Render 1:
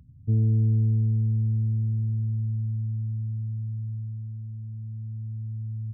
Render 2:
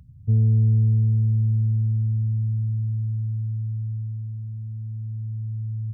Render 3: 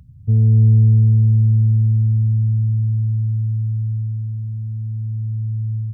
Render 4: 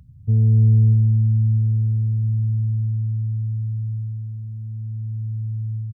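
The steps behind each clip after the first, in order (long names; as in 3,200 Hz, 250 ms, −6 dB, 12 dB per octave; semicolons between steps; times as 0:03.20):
parametric band 310 Hz −12 dB 0.75 octaves; level +4.5 dB
automatic gain control gain up to 3.5 dB; level +3.5 dB
repeating echo 651 ms, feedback 44%, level −12 dB; level −2.5 dB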